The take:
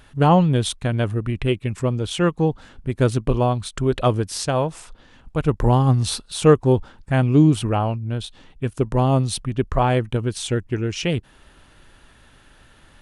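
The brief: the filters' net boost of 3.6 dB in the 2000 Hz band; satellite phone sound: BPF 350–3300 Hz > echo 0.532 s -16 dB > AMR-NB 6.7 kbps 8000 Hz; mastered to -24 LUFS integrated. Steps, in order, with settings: BPF 350–3300 Hz; bell 2000 Hz +5.5 dB; echo 0.532 s -16 dB; gain +1 dB; AMR-NB 6.7 kbps 8000 Hz

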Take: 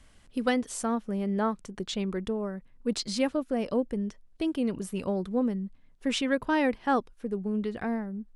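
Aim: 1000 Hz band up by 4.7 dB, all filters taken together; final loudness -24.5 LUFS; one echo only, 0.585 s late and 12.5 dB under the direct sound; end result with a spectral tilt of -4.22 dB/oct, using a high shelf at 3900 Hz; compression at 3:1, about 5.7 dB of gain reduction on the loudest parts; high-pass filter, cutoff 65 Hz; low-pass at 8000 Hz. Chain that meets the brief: HPF 65 Hz; LPF 8000 Hz; bell 1000 Hz +5.5 dB; high shelf 3900 Hz +8 dB; compressor 3:1, threshold -26 dBFS; echo 0.585 s -12.5 dB; gain +7 dB

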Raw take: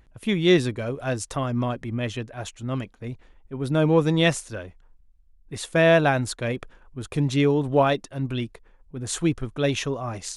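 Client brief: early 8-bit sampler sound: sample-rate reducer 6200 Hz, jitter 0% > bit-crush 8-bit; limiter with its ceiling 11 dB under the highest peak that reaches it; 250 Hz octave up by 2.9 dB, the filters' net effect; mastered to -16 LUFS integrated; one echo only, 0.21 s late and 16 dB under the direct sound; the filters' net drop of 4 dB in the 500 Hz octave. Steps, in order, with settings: bell 250 Hz +7 dB; bell 500 Hz -8 dB; limiter -18.5 dBFS; echo 0.21 s -16 dB; sample-rate reducer 6200 Hz, jitter 0%; bit-crush 8-bit; gain +12.5 dB

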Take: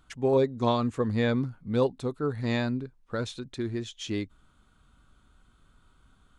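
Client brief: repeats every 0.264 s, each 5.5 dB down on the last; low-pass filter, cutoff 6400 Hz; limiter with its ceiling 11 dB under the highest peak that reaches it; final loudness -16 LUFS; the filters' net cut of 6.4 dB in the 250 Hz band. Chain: LPF 6400 Hz; bell 250 Hz -7.5 dB; limiter -26 dBFS; feedback echo 0.264 s, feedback 53%, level -5.5 dB; gain +19.5 dB

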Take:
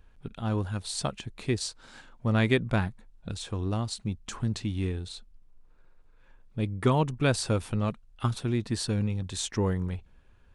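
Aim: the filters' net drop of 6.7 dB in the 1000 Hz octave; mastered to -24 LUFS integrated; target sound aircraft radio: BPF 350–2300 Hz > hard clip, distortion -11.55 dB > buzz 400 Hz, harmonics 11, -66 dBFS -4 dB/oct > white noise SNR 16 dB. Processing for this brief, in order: BPF 350–2300 Hz; bell 1000 Hz -8.5 dB; hard clip -25.5 dBFS; buzz 400 Hz, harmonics 11, -66 dBFS -4 dB/oct; white noise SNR 16 dB; gain +15 dB

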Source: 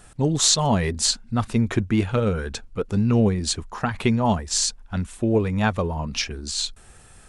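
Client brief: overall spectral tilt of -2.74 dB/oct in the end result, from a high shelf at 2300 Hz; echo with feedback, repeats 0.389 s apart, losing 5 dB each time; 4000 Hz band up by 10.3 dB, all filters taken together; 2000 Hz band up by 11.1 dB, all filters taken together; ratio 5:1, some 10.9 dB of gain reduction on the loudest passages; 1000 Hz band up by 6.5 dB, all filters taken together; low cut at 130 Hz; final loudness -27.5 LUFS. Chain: HPF 130 Hz; bell 1000 Hz +5 dB; bell 2000 Hz +8.5 dB; high shelf 2300 Hz +5.5 dB; bell 4000 Hz +5 dB; compressor 5:1, threshold -18 dBFS; feedback echo 0.389 s, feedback 56%, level -5 dB; gain -6 dB

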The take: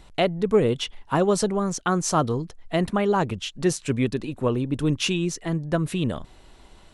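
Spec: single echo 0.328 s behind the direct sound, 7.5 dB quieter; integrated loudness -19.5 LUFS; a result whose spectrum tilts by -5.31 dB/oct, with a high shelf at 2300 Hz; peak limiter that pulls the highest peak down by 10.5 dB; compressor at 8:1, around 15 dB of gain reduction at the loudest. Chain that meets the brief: high shelf 2300 Hz -6 dB; compressor 8:1, threshold -31 dBFS; limiter -29.5 dBFS; echo 0.328 s -7.5 dB; gain +19 dB

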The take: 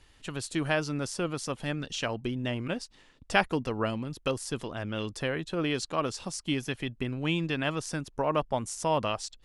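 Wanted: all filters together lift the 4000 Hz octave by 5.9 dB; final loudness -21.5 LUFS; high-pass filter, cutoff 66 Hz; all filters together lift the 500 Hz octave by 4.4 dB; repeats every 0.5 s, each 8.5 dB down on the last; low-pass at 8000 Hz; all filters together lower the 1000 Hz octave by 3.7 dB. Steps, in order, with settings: HPF 66 Hz; LPF 8000 Hz; bell 500 Hz +7.5 dB; bell 1000 Hz -8 dB; bell 4000 Hz +9 dB; feedback echo 0.5 s, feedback 38%, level -8.5 dB; gain +7 dB

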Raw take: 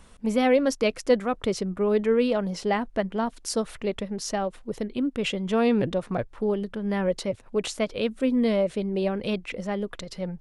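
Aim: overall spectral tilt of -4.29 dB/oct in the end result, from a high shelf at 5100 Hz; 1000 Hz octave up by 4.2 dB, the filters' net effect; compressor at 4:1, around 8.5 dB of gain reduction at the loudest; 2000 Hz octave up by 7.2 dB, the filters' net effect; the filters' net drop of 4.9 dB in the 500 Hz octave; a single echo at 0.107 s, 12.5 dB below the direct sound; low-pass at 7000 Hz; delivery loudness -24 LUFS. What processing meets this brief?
LPF 7000 Hz; bell 500 Hz -8 dB; bell 1000 Hz +7.5 dB; bell 2000 Hz +6.5 dB; high shelf 5100 Hz +4.5 dB; compressor 4:1, threshold -28 dBFS; echo 0.107 s -12.5 dB; gain +8 dB

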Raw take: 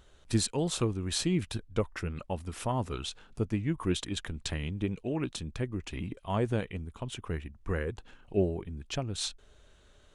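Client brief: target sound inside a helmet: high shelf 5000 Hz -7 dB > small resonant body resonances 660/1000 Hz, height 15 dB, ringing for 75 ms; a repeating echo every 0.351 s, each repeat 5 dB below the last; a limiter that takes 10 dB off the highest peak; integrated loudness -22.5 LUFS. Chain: limiter -25.5 dBFS; high shelf 5000 Hz -7 dB; feedback echo 0.351 s, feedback 56%, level -5 dB; small resonant body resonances 660/1000 Hz, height 15 dB, ringing for 75 ms; gain +12.5 dB

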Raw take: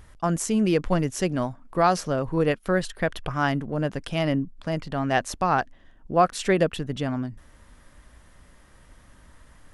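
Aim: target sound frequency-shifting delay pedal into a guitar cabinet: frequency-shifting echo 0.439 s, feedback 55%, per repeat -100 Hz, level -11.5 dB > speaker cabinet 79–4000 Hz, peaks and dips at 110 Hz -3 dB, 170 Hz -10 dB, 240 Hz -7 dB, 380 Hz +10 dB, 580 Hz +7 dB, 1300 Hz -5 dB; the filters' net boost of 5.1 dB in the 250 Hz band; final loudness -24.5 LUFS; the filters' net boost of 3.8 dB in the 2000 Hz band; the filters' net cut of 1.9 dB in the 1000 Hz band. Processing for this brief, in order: bell 250 Hz +8 dB; bell 1000 Hz -6.5 dB; bell 2000 Hz +8 dB; frequency-shifting echo 0.439 s, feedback 55%, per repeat -100 Hz, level -11.5 dB; speaker cabinet 79–4000 Hz, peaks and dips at 110 Hz -3 dB, 170 Hz -10 dB, 240 Hz -7 dB, 380 Hz +10 dB, 580 Hz +7 dB, 1300 Hz -5 dB; gain -4 dB

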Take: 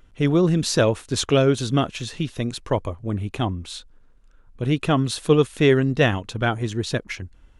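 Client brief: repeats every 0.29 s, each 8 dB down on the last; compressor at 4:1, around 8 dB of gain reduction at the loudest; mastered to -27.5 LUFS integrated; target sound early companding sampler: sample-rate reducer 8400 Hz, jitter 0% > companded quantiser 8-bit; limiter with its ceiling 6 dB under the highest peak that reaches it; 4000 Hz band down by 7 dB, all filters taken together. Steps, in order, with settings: bell 4000 Hz -9 dB; compressor 4:1, threshold -21 dBFS; limiter -17.5 dBFS; feedback echo 0.29 s, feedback 40%, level -8 dB; sample-rate reducer 8400 Hz, jitter 0%; companded quantiser 8-bit; gain +0.5 dB

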